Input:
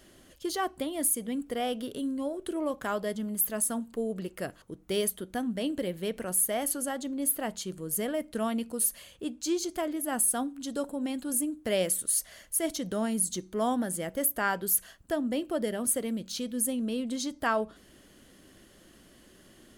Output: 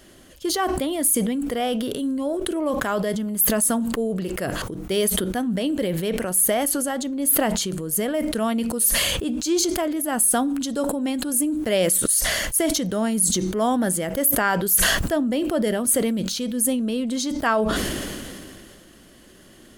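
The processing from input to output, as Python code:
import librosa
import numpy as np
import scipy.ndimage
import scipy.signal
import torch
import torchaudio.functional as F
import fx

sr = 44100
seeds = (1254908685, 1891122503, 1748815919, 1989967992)

y = fx.sustainer(x, sr, db_per_s=24.0)
y = y * librosa.db_to_amplitude(6.5)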